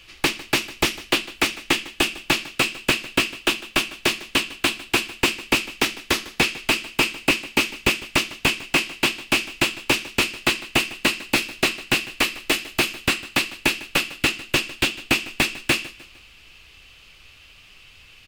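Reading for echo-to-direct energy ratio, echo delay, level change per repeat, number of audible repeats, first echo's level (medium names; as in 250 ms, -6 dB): -18.0 dB, 152 ms, -7.5 dB, 3, -19.0 dB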